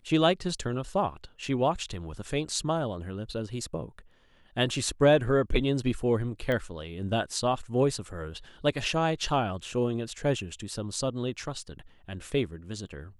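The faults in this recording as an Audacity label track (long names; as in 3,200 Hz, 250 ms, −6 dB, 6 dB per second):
6.520000	6.520000	click −19 dBFS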